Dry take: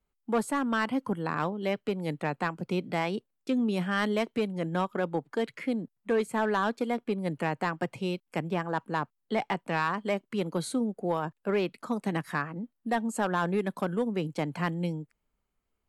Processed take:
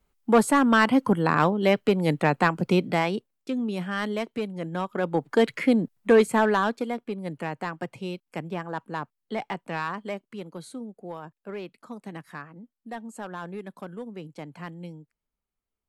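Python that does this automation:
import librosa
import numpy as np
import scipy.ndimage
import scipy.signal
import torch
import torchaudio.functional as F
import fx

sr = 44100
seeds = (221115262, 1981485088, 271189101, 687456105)

y = fx.gain(x, sr, db=fx.line((2.71, 9.0), (3.52, -1.0), (4.8, -1.0), (5.38, 9.5), (6.21, 9.5), (7.04, -2.0), (9.97, -2.0), (10.5, -8.5)))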